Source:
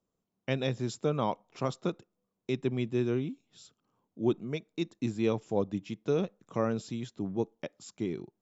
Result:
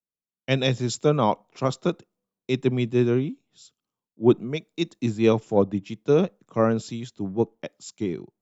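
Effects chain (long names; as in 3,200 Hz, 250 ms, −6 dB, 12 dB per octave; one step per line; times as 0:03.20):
multiband upward and downward expander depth 70%
level +8 dB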